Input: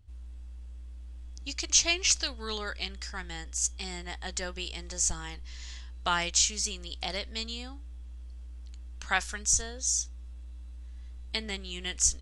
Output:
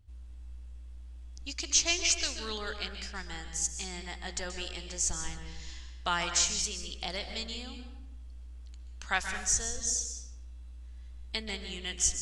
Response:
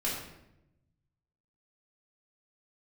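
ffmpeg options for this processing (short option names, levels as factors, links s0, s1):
-filter_complex "[0:a]asplit=2[s0][s1];[1:a]atrim=start_sample=2205,adelay=128[s2];[s1][s2]afir=irnorm=-1:irlink=0,volume=0.237[s3];[s0][s3]amix=inputs=2:normalize=0,volume=0.75"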